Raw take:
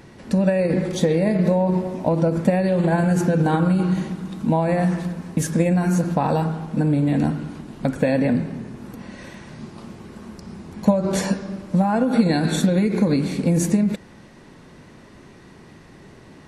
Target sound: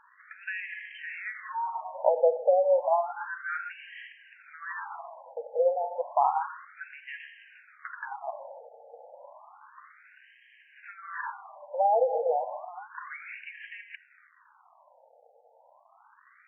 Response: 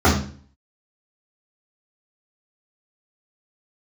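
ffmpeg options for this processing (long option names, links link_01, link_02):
-af "acontrast=48,aresample=11025,aeval=exprs='sgn(val(0))*max(abs(val(0))-0.00794,0)':channel_layout=same,aresample=44100,bass=frequency=250:gain=5,treble=frequency=4000:gain=-8,afftfilt=real='re*between(b*sr/1024,610*pow(2300/610,0.5+0.5*sin(2*PI*0.31*pts/sr))/1.41,610*pow(2300/610,0.5+0.5*sin(2*PI*0.31*pts/sr))*1.41)':imag='im*between(b*sr/1024,610*pow(2300/610,0.5+0.5*sin(2*PI*0.31*pts/sr))/1.41,610*pow(2300/610,0.5+0.5*sin(2*PI*0.31*pts/sr))*1.41)':win_size=1024:overlap=0.75,volume=-4.5dB"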